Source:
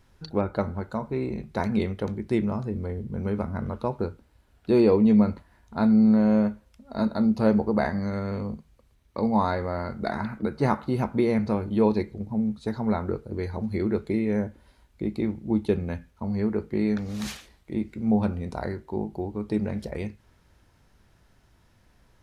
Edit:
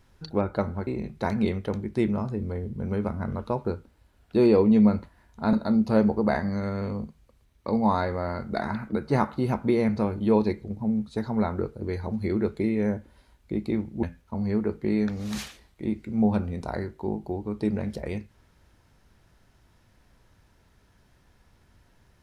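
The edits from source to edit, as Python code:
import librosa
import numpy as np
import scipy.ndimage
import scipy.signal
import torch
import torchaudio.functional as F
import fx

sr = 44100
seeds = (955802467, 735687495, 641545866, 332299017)

y = fx.edit(x, sr, fx.cut(start_s=0.87, length_s=0.34),
    fx.cut(start_s=5.87, length_s=1.16),
    fx.cut(start_s=15.53, length_s=0.39), tone=tone)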